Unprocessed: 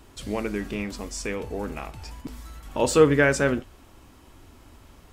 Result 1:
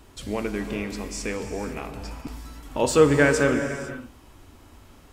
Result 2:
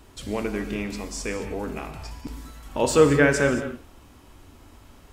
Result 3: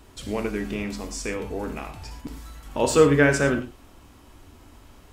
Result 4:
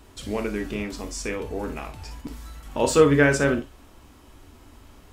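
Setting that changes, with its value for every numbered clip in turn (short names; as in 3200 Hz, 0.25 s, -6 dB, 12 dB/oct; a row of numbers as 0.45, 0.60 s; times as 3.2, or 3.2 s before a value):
non-linear reverb, gate: 530, 250, 130, 80 ms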